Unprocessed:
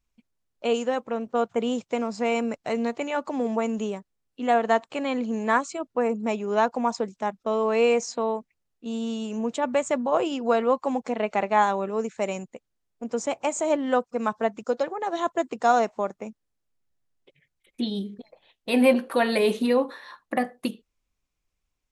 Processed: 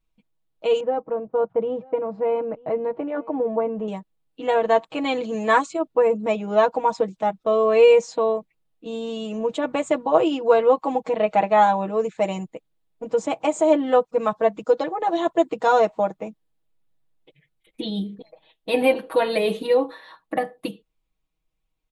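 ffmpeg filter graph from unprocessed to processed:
-filter_complex "[0:a]asettb=1/sr,asplit=3[s0][s1][s2];[s0]atrim=end=0.804[s3];[s1]atrim=start=0.8:end=3.88,asetpts=PTS-STARTPTS,afade=t=in:d=0.004:c=qsin,afade=t=out:st=3.076:d=0.004:c=qsin,lowpass=1200,agate=range=0.0224:threshold=0.00355:ratio=3:release=100:detection=peak,aecho=1:1:939:0.0631,atrim=end_sample=135828[s4];[s2]atrim=start=3.876[s5];[s3][s4]acrossfade=d=0.004:c1=hsin:c2=qsin[s6];[s6][s5]acrossfade=d=0.004:c1=qsin:c2=hsin,asettb=1/sr,asplit=3[s7][s8][s9];[s7]atrim=end=5.044[s10];[s8]atrim=start=5.04:end=5.66,asetpts=PTS-STARTPTS,afade=t=in:d=0.004:c=qsin,afade=t=out:st=0.616:d=0.004:c=qsin,highpass=53,highshelf=f=2900:g=9[s11];[s9]atrim=start=5.656[s12];[s10][s11]acrossfade=d=0.004:c1=hsin:c2=qsin[s13];[s13][s12]acrossfade=d=0.004:c1=qsin:c2=hsin,aecho=1:1:6.3:0.91,dynaudnorm=f=290:g=31:m=1.88,firequalizer=gain_entry='entry(830,0);entry(1500,-5);entry(3600,-1);entry(5600,-11);entry(10000,-5)':delay=0.05:min_phase=1"

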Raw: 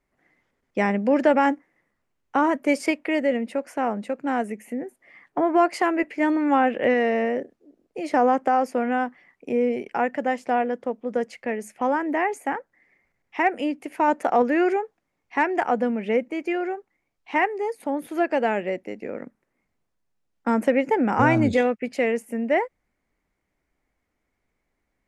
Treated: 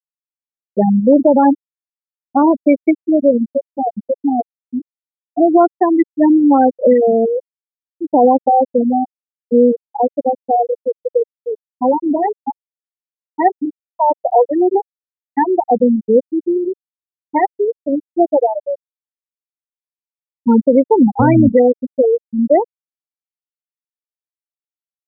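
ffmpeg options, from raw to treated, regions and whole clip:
-filter_complex "[0:a]asettb=1/sr,asplit=3[s0][s1][s2];[s0]atrim=end=13.654[s3];[s1]atrim=start=13.65:end=14.75,asetpts=PTS-STARTPTS,afade=t=in:d=0.004:c=qsin,afade=t=out:st=1.096:d=0.004:c=qsin,highpass=390,lowpass=3800,aeval=exprs='sgn(val(0))*max(abs(val(0))-0.00355,0)':c=same[s4];[s2]atrim=start=14.746[s5];[s3][s4]acrossfade=d=0.004:c1=hsin:c2=qsin[s6];[s6][s5]acrossfade=d=0.004:c1=qsin:c2=hsin,afftfilt=real='re*gte(hypot(re,im),0.447)':imag='im*gte(hypot(re,im),0.447)':win_size=1024:overlap=0.75,equalizer=f=1800:w=0.87:g=-12,alimiter=level_in=5.01:limit=0.891:release=50:level=0:latency=1,volume=0.891"

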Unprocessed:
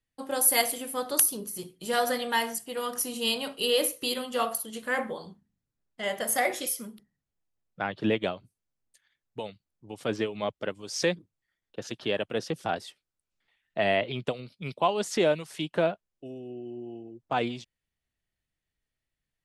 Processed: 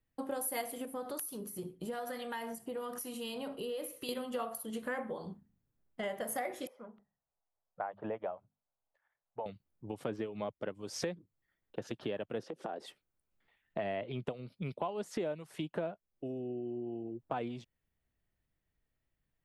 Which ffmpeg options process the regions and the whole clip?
-filter_complex "[0:a]asettb=1/sr,asplit=3[s0][s1][s2];[s0]atrim=end=0.854[s3];[s1]atrim=start=0.85:end=4.09,asetpts=PTS-STARTPTS,afade=t=in:d=0.004:c=qsin,afade=t=out:st=3.236:d=0.004:c=qsin,acompressor=threshold=0.0112:ratio=2:attack=3.2:release=140:knee=1:detection=peak,acrossover=split=1100[s4][s5];[s4]aeval=exprs='val(0)*(1-0.5/2+0.5/2*cos(2*PI*1.1*n/s))':c=same[s6];[s5]aeval=exprs='val(0)*(1-0.5/2-0.5/2*cos(2*PI*1.1*n/s))':c=same[s7];[s6][s7]amix=inputs=2:normalize=0[s8];[s2]atrim=start=4.086[s9];[s3][s8]acrossfade=d=0.004:c1=hsin:c2=qsin[s10];[s10][s9]acrossfade=d=0.004:c1=qsin:c2=hsin,asettb=1/sr,asplit=3[s11][s12][s13];[s11]atrim=end=6.674[s14];[s12]atrim=start=6.67:end=9.46,asetpts=PTS-STARTPTS,afade=t=in:d=0.004:c=qsin,afade=t=out:st=2.786:d=0.004:c=qsin,lowpass=1100,lowshelf=f=460:t=q:w=1.5:g=-13.5,bandreject=f=50:t=h:w=6,bandreject=f=100:t=h:w=6,bandreject=f=150:t=h:w=6,bandreject=f=200:t=h:w=6,bandreject=f=250:t=h:w=6[s15];[s13]atrim=start=9.456[s16];[s14][s15]acrossfade=d=0.004:c1=hsin:c2=qsin[s17];[s17][s16]acrossfade=d=0.004:c1=qsin:c2=hsin,asettb=1/sr,asplit=3[s18][s19][s20];[s18]atrim=end=12.434[s21];[s19]atrim=start=12.43:end=12.86,asetpts=PTS-STARTPTS,afade=t=in:d=0.004:c=qsin,afade=t=out:st=0.426:d=0.004:c=qsin,equalizer=f=430:w=0.46:g=10,acompressor=threshold=0.0178:ratio=5:attack=3.2:release=140:knee=1:detection=peak,highpass=260,lowpass=7900[s22];[s20]atrim=start=12.856[s23];[s21][s22]acrossfade=d=0.004:c1=hsin:c2=qsin[s24];[s24][s23]acrossfade=d=0.004:c1=qsin:c2=hsin,equalizer=f=5700:t=o:w=2.8:g=-12,acompressor=threshold=0.00891:ratio=4,volume=1.68"

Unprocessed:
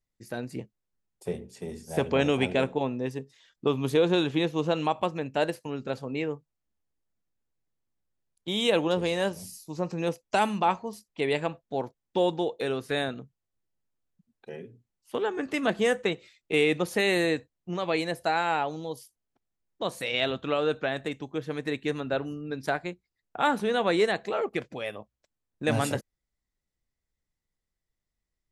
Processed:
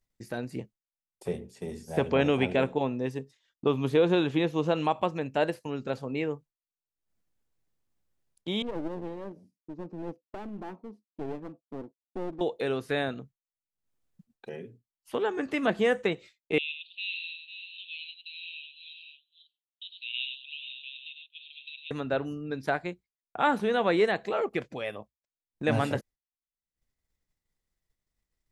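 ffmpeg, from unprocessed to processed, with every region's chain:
-filter_complex "[0:a]asettb=1/sr,asplit=3[s0][s1][s2];[s0]atrim=end=8.624[s3];[s1]atrim=start=8.62:end=12.41,asetpts=PTS-STARTPTS,afade=t=in:d=0.004:c=qsin,afade=t=out:st=3.786:d=0.004:c=qsin,bandpass=f=290:t=q:w=2.5,aeval=exprs='clip(val(0),-1,0.0075)':c=same[s4];[s2]atrim=start=12.406[s5];[s3][s4]acrossfade=d=0.004:c1=hsin:c2=qsin[s6];[s6][s5]acrossfade=d=0.004:c1=qsin:c2=hsin,asettb=1/sr,asplit=3[s7][s8][s9];[s7]atrim=end=16.584[s10];[s8]atrim=start=16.58:end=21.91,asetpts=PTS-STARTPTS,afade=t=in:d=0.004:c=qsin,afade=t=out:st=5.326:d=0.004:c=qsin,asuperpass=centerf=3200:order=12:qfactor=2.2,aecho=1:1:99|493|541:0.422|0.211|0.168,atrim=end_sample=235053[s11];[s9]atrim=start=21.906[s12];[s10][s11]acrossfade=d=0.004:c1=hsin:c2=qsin[s13];[s13][s12]acrossfade=d=0.004:c1=qsin:c2=hsin,acompressor=mode=upward:threshold=0.0141:ratio=2.5,agate=range=0.0224:threshold=0.00708:ratio=3:detection=peak,acrossover=split=3600[s14][s15];[s15]acompressor=threshold=0.00282:ratio=4:attack=1:release=60[s16];[s14][s16]amix=inputs=2:normalize=0"

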